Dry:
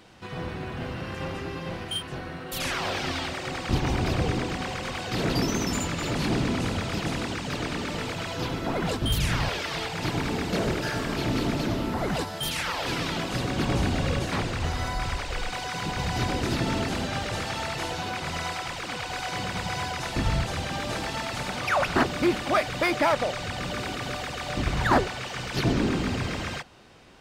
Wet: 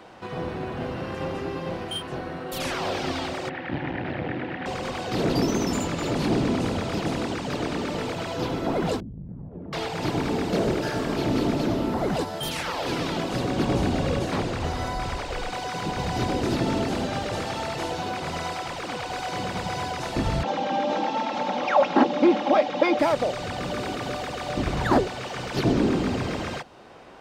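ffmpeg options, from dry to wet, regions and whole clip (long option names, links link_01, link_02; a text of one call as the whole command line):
ffmpeg -i in.wav -filter_complex "[0:a]asettb=1/sr,asplit=3[link_01][link_02][link_03];[link_01]atrim=end=3.494[link_04];[link_02]atrim=start=3.49:end=4.66,asetpts=PTS-STARTPTS,afade=type=in:duration=0.004:curve=qsin,afade=type=out:start_time=1.166:duration=0.004:curve=qsin,aeval=exprs='clip(val(0),-1,0.0224)':channel_layout=same,highpass=120,equalizer=frequency=210:width_type=q:width=4:gain=-5,equalizer=frequency=430:width_type=q:width=4:gain=-9,equalizer=frequency=670:width_type=q:width=4:gain=-4,equalizer=frequency=1100:width_type=q:width=4:gain=-9,equalizer=frequency=1800:width_type=q:width=4:gain=8,lowpass=frequency=2900:width=0.5412,lowpass=frequency=2900:width=1.3066[link_05];[link_03]atrim=start=4.656[link_06];[link_04][link_05]acrossfade=duration=0.004:curve1=hsin:curve2=qsin[link_07];[link_07][link_06]acrossfade=duration=0.004:curve1=qsin:curve2=hsin,asettb=1/sr,asplit=3[link_08][link_09][link_10];[link_08]atrim=end=9.004[link_11];[link_09]atrim=start=9:end=9.73,asetpts=PTS-STARTPTS,afade=type=in:duration=0.004:curve=qsin,afade=type=out:start_time=0.726:duration=0.004:curve=qsin,lowpass=frequency=200:width_type=q:width=2.4,acompressor=threshold=-34dB:ratio=20:attack=3.2:release=140:knee=1:detection=peak[link_12];[link_10]atrim=start=9.726[link_13];[link_11][link_12]acrossfade=duration=0.004:curve1=hsin:curve2=qsin[link_14];[link_14][link_13]acrossfade=duration=0.004:curve1=qsin:curve2=hsin,asettb=1/sr,asplit=3[link_15][link_16][link_17];[link_15]atrim=end=20.434[link_18];[link_16]atrim=start=20.43:end=22.99,asetpts=PTS-STARTPTS,afade=type=in:duration=0.004:curve=qsin,afade=type=out:start_time=2.556:duration=0.004:curve=qsin,highpass=frequency=160:width=0.5412,highpass=frequency=160:width=1.3066,equalizer=frequency=600:width_type=q:width=4:gain=4,equalizer=frequency=870:width_type=q:width=4:gain=9,equalizer=frequency=4600:width_type=q:width=4:gain=-5,lowpass=frequency=5400:width=0.5412,lowpass=frequency=5400:width=1.3066,aecho=1:1:3.7:0.55,atrim=end_sample=112896[link_19];[link_17]atrim=start=22.986[link_20];[link_18][link_19]acrossfade=duration=0.004:curve1=hsin:curve2=qsin[link_21];[link_21][link_20]acrossfade=duration=0.004:curve1=qsin:curve2=hsin,equalizer=frequency=720:width=0.39:gain=14,acrossover=split=420|3000[link_22][link_23][link_24];[link_23]acompressor=threshold=-45dB:ratio=1.5[link_25];[link_22][link_25][link_24]amix=inputs=3:normalize=0,volume=-3dB" out.wav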